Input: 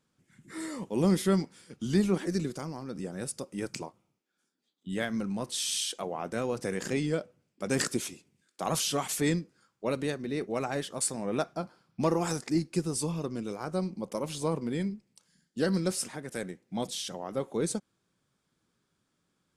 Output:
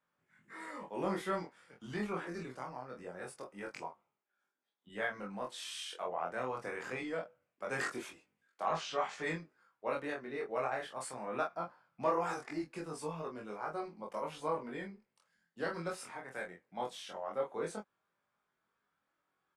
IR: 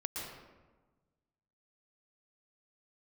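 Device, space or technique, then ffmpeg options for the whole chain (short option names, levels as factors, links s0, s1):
double-tracked vocal: -filter_complex "[0:a]asettb=1/sr,asplit=3[s0][s1][s2];[s0]atrim=end=8.634[s3];[s1]atrim=start=8.63:end=9.22,asetpts=PTS-STARTPTS,afade=t=in:d=0.004:c=qsin,afade=t=out:st=0.586:d=0.004:c=qsin,lowpass=f=6400:w=0.5412,lowpass=f=6400:w=1.3066[s4];[s2]atrim=start=9.216[s5];[s3][s4]acrossfade=d=0.004:c1=hsin:c2=qsin[s6];[s6][s5]acrossfade=d=0.004:c1=qsin:c2=hsin,acrossover=split=570 2300:gain=0.141 1 0.126[s7][s8][s9];[s7][s8][s9]amix=inputs=3:normalize=0,asplit=2[s10][s11];[s11]adelay=24,volume=0.708[s12];[s10][s12]amix=inputs=2:normalize=0,flanger=delay=19:depth=4.2:speed=0.22,volume=1.33"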